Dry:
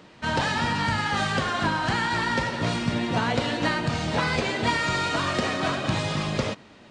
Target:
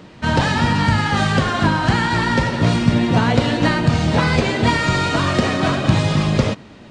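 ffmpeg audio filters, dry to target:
-af "lowshelf=f=310:g=8.5,volume=5dB"

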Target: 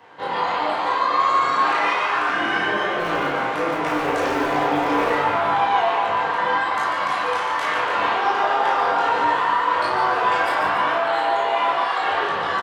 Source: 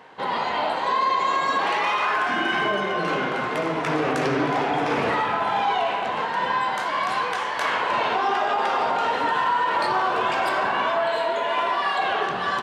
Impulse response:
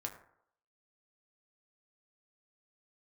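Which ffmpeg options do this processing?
-filter_complex "[0:a]acrossover=split=200|630|4500[a][b][c][d];[a]aeval=exprs='(mod(47.3*val(0)+1,2)-1)/47.3':c=same[e];[e][b][c][d]amix=inputs=4:normalize=0,flanger=delay=19:depth=5:speed=1.3,asplit=2[f][g];[g]adelay=34,volume=-4dB[h];[f][h]amix=inputs=2:normalize=0,asplit=8[i][j][k][l][m][n][o][p];[j]adelay=144,afreqshift=130,volume=-7.5dB[q];[k]adelay=288,afreqshift=260,volume=-12.5dB[r];[l]adelay=432,afreqshift=390,volume=-17.6dB[s];[m]adelay=576,afreqshift=520,volume=-22.6dB[t];[n]adelay=720,afreqshift=650,volume=-27.6dB[u];[o]adelay=864,afreqshift=780,volume=-32.7dB[v];[p]adelay=1008,afreqshift=910,volume=-37.7dB[w];[i][q][r][s][t][u][v][w]amix=inputs=8:normalize=0[x];[1:a]atrim=start_sample=2205[y];[x][y]afir=irnorm=-1:irlink=0,volume=3.5dB"

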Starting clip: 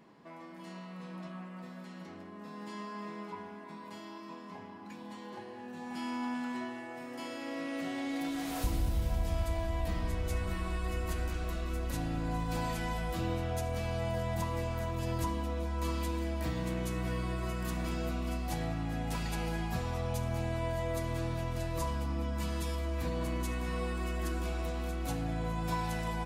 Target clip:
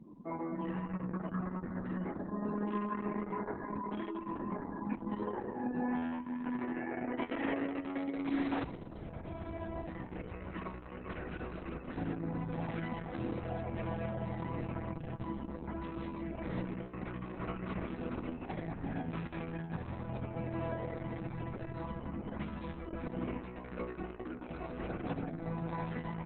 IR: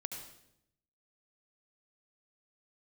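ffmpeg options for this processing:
-af "afftdn=nr=34:nf=-51,equalizer=f=750:w=0.86:g=-4.5,acompressor=threshold=-42dB:ratio=12,highpass=140,lowpass=2.1k,volume=13dB" -ar 48000 -c:a libopus -b:a 6k

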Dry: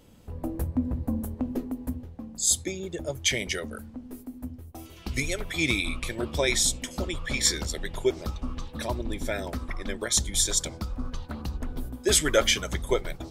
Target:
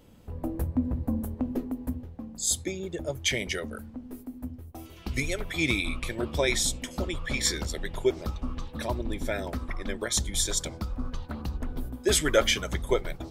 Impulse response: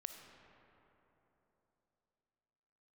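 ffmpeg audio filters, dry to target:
-af "equalizer=f=7.3k:w=0.54:g=-4"

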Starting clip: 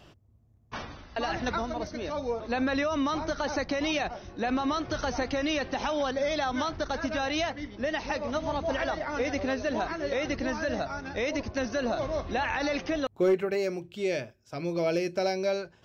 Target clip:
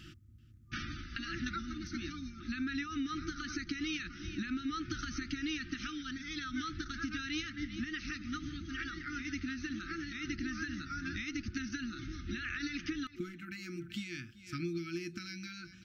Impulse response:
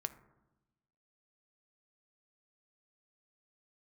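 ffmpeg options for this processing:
-af "aecho=1:1:384:0.0891,acompressor=threshold=-37dB:ratio=6,afftfilt=real='re*(1-between(b*sr/4096,360,1200))':imag='im*(1-between(b*sr/4096,360,1200))':win_size=4096:overlap=0.75,volume=3.5dB"

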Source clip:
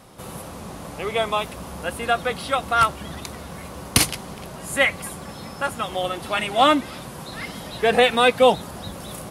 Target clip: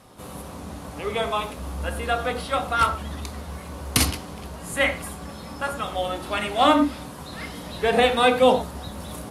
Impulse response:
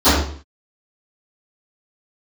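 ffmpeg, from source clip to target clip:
-filter_complex "[0:a]asplit=2[a][b];[1:a]atrim=start_sample=2205,afade=t=out:st=0.17:d=0.01,atrim=end_sample=7938[c];[b][c]afir=irnorm=-1:irlink=0,volume=-31.5dB[d];[a][d]amix=inputs=2:normalize=0,volume=-3.5dB" -ar 32000 -c:a aac -b:a 64k

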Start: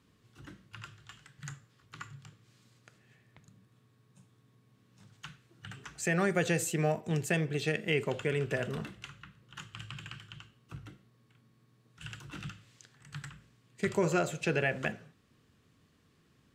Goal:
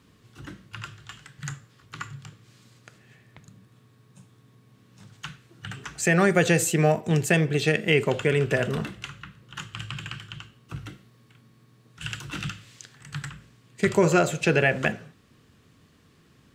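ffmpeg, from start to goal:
-filter_complex "[0:a]asplit=3[a][b][c];[a]afade=t=out:st=10.75:d=0.02[d];[b]adynamicequalizer=threshold=0.00112:dfrequency=1600:dqfactor=0.7:tfrequency=1600:tqfactor=0.7:attack=5:release=100:ratio=0.375:range=2:mode=boostabove:tftype=highshelf,afade=t=in:st=10.75:d=0.02,afade=t=out:st=13.1:d=0.02[e];[c]afade=t=in:st=13.1:d=0.02[f];[d][e][f]amix=inputs=3:normalize=0,volume=9dB"

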